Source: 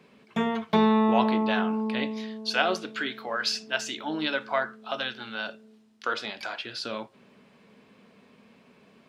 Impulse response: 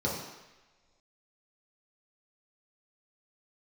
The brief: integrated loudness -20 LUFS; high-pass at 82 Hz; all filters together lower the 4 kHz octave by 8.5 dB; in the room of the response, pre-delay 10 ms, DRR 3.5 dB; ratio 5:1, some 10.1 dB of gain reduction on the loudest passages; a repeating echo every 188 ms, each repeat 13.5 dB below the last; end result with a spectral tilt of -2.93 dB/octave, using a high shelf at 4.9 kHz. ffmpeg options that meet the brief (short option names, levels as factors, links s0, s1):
-filter_complex "[0:a]highpass=82,equalizer=f=4000:t=o:g=-7.5,highshelf=f=4900:g=-8,acompressor=threshold=0.0355:ratio=5,aecho=1:1:188|376:0.211|0.0444,asplit=2[s0][s1];[1:a]atrim=start_sample=2205,adelay=10[s2];[s1][s2]afir=irnorm=-1:irlink=0,volume=0.251[s3];[s0][s3]amix=inputs=2:normalize=0,volume=4.47"